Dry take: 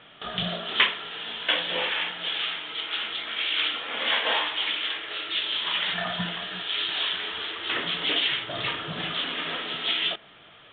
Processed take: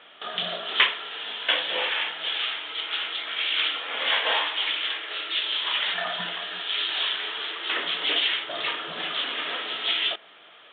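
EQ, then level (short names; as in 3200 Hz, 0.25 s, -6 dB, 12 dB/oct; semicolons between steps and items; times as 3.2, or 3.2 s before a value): HPF 370 Hz 12 dB/oct; +1.0 dB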